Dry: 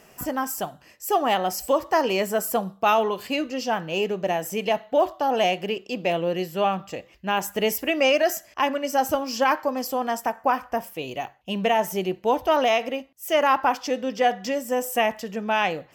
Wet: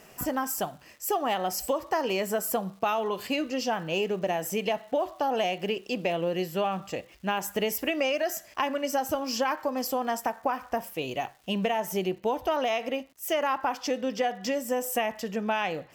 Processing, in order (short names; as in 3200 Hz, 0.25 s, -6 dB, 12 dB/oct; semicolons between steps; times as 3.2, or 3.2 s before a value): compressor, threshold -24 dBFS, peak gain reduction 9 dB; crackle 500/s -49 dBFS, from 11.79 s 120/s